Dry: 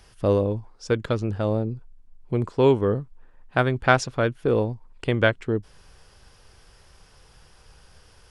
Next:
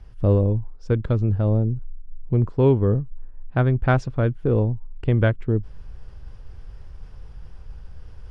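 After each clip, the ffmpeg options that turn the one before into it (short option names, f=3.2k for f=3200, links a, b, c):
-af "areverse,acompressor=mode=upward:threshold=-42dB:ratio=2.5,areverse,aemphasis=mode=reproduction:type=riaa,volume=-4.5dB"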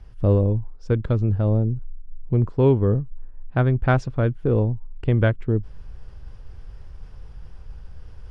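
-af anull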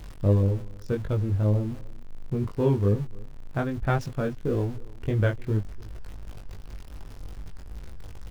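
-af "aeval=exprs='val(0)+0.5*0.0237*sgn(val(0))':c=same,flanger=delay=19:depth=2.6:speed=2.7,aecho=1:1:297:0.0668,volume=-2.5dB"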